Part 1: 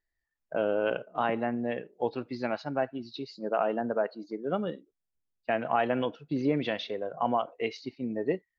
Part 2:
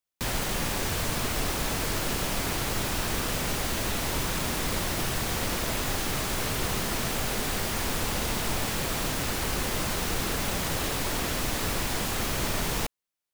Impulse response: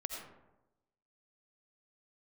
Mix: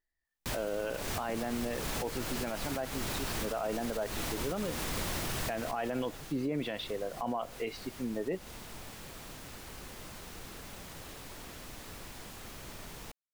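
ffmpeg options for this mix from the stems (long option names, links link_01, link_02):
-filter_complex "[0:a]volume=-2.5dB,asplit=2[link_01][link_02];[1:a]adelay=250,volume=-5.5dB,afade=type=out:start_time=5.46:duration=0.76:silence=0.251189[link_03];[link_02]apad=whole_len=599115[link_04];[link_03][link_04]sidechaincompress=threshold=-38dB:ratio=3:attack=24:release=191[link_05];[link_01][link_05]amix=inputs=2:normalize=0,alimiter=level_in=1dB:limit=-24dB:level=0:latency=1:release=18,volume=-1dB"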